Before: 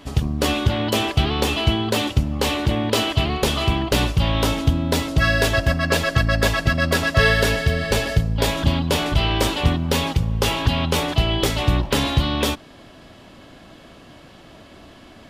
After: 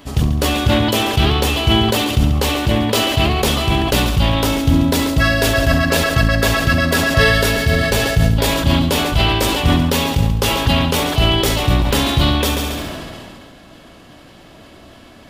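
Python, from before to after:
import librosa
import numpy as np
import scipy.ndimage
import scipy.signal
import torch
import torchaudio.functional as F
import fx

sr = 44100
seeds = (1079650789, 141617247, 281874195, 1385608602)

y = fx.high_shelf(x, sr, hz=12000.0, db=9.0)
y = fx.echo_heads(y, sr, ms=69, heads='first and second', feedback_pct=40, wet_db=-13.5)
y = fx.sustainer(y, sr, db_per_s=24.0)
y = F.gain(torch.from_numpy(y), 1.5).numpy()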